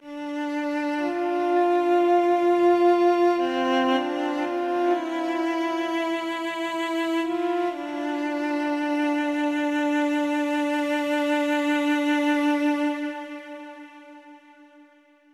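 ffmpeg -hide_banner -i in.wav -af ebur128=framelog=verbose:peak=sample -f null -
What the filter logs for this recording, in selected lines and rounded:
Integrated loudness:
  I:         -23.7 LUFS
  Threshold: -34.3 LUFS
Loudness range:
  LRA:         5.4 LU
  Threshold: -43.9 LUFS
  LRA low:   -26.4 LUFS
  LRA high:  -21.0 LUFS
Sample peak:
  Peak:       -9.7 dBFS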